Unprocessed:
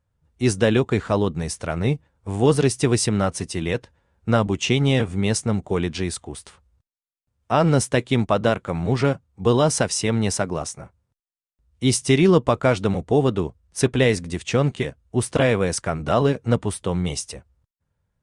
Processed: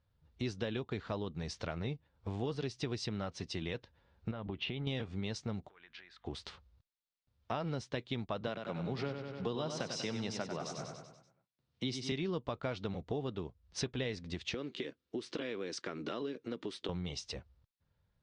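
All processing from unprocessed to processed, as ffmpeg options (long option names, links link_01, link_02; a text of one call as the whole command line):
ffmpeg -i in.wav -filter_complex "[0:a]asettb=1/sr,asplit=3[link_01][link_02][link_03];[link_01]atrim=end=4.314[link_04];[link_02]atrim=start=4.31:end=4.87,asetpts=PTS-STARTPTS,afade=type=in:duration=0.004:curve=qsin,afade=type=out:start_time=0.556:duration=0.004:curve=qsin,lowpass=frequency=4000:width=0.5412,lowpass=frequency=4000:width=1.3066,aemphasis=mode=reproduction:type=50fm,acompressor=threshold=-24dB:ratio=5:attack=3.2:release=140:knee=1:detection=peak[link_05];[link_03]atrim=start=4.866[link_06];[link_04][link_05]acrossfade=duration=0.004:curve1=hsin:curve2=qsin[link_07];[link_07][link_06]acrossfade=duration=0.004:curve1=qsin:curve2=hsin,asettb=1/sr,asplit=3[link_08][link_09][link_10];[link_08]atrim=end=5.694[link_11];[link_09]atrim=start=5.69:end=6.25,asetpts=PTS-STARTPTS,afade=type=in:duration=0.004:curve=qsin,afade=type=out:start_time=0.556:duration=0.004:curve=qsin,acompressor=threshold=-35dB:ratio=10:attack=3.2:release=140:knee=1:detection=peak,bandpass=frequency=1700:width_type=q:width=2.4,aeval=exprs='val(0)+0.000178*(sin(2*PI*50*n/s)+sin(2*PI*2*50*n/s)/2+sin(2*PI*3*50*n/s)/3+sin(2*PI*4*50*n/s)/4+sin(2*PI*5*50*n/s)/5)':channel_layout=same[link_12];[link_10]atrim=start=6.246[link_13];[link_11][link_12]acrossfade=duration=0.004:curve1=hsin:curve2=qsin[link_14];[link_14][link_13]acrossfade=duration=0.004:curve1=qsin:curve2=hsin,asettb=1/sr,asplit=3[link_15][link_16][link_17];[link_15]atrim=end=8.474[link_18];[link_16]atrim=start=8.47:end=12.12,asetpts=PTS-STARTPTS,afade=type=in:duration=0.004:curve=qsin,afade=type=out:start_time=3.646:duration=0.004:curve=qsin,highpass=frequency=120:width=0.5412,highpass=frequency=120:width=1.3066,aecho=1:1:96|192|288|384|480|576:0.398|0.211|0.112|0.0593|0.0314|0.0166,atrim=end_sample=160965[link_19];[link_17]atrim=start=12.116[link_20];[link_18][link_19]acrossfade=duration=0.004:curve1=hsin:curve2=qsin[link_21];[link_21][link_20]acrossfade=duration=0.004:curve1=qsin:curve2=hsin,asettb=1/sr,asplit=3[link_22][link_23][link_24];[link_22]atrim=end=14.544[link_25];[link_23]atrim=start=14.54:end=16.89,asetpts=PTS-STARTPTS,afade=type=in:duration=0.004:curve=qsin,afade=type=out:start_time=2.346:duration=0.004:curve=qsin,equalizer=frequency=730:width_type=o:width=0.97:gain=-11,acompressor=threshold=-25dB:ratio=3:attack=3.2:release=140:knee=1:detection=peak,highpass=frequency=320:width_type=q:width=2.1[link_26];[link_24]atrim=start=16.886[link_27];[link_25][link_26]acrossfade=duration=0.004:curve1=hsin:curve2=qsin[link_28];[link_28][link_27]acrossfade=duration=0.004:curve1=qsin:curve2=hsin,lowpass=frequency=5400:width=0.5412,lowpass=frequency=5400:width=1.3066,equalizer=frequency=4000:width=1.5:gain=6.5,acompressor=threshold=-34dB:ratio=4,volume=-3.5dB" out.wav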